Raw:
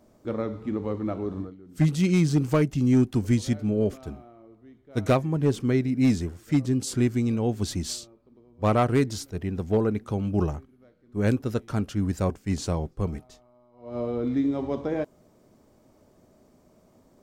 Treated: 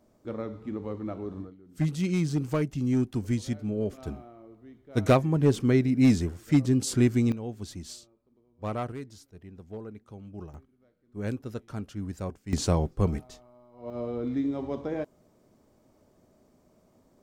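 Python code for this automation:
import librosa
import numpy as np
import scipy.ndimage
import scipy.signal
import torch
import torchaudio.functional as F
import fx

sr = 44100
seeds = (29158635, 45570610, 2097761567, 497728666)

y = fx.gain(x, sr, db=fx.steps((0.0, -5.5), (3.98, 1.0), (7.32, -10.5), (8.92, -17.0), (10.54, -9.0), (12.53, 3.0), (13.9, -4.0)))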